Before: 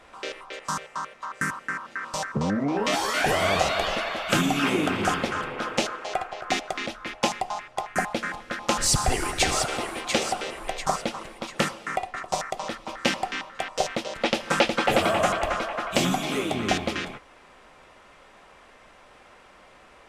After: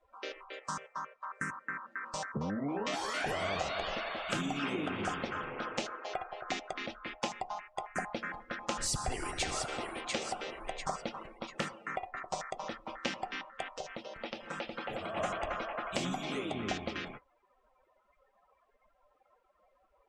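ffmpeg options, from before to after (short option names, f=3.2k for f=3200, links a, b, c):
-filter_complex "[0:a]asplit=3[a][b][c];[a]afade=t=out:st=13.72:d=0.02[d];[b]acompressor=threshold=-35dB:ratio=2:attack=3.2:release=140:knee=1:detection=peak,afade=t=in:st=13.72:d=0.02,afade=t=out:st=15.16:d=0.02[e];[c]afade=t=in:st=15.16:d=0.02[f];[d][e][f]amix=inputs=3:normalize=0,acompressor=threshold=-27dB:ratio=2,afftdn=nr=24:nf=-43,volume=-7dB"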